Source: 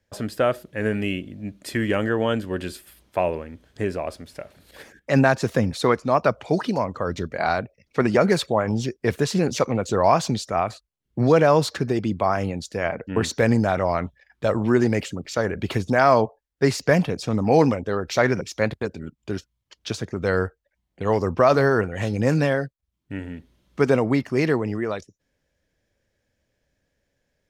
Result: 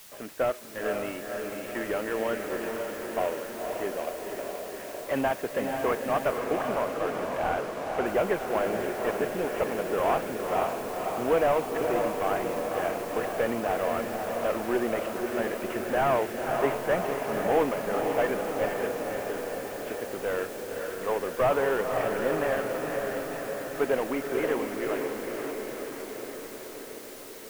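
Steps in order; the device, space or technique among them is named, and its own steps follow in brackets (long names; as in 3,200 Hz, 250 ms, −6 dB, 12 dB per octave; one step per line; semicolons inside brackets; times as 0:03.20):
army field radio (band-pass filter 370–3,000 Hz; variable-slope delta modulation 16 kbit/s; white noise bed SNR 18 dB)
0:06.38–0:08.06: high-frequency loss of the air 52 metres
feedback delay with all-pass diffusion 517 ms, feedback 69%, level −4 dB
level −4 dB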